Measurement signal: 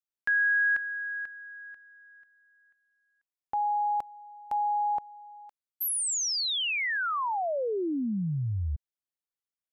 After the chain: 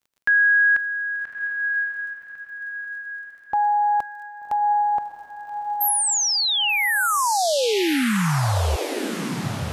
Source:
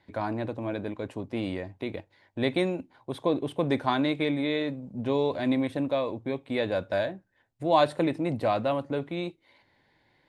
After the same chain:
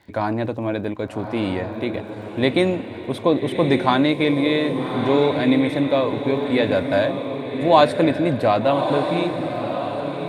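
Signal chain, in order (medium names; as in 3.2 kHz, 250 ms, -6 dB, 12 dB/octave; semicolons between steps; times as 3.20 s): crackle 28 per s -53 dBFS; echo that smears into a reverb 1197 ms, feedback 44%, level -6.5 dB; trim +8 dB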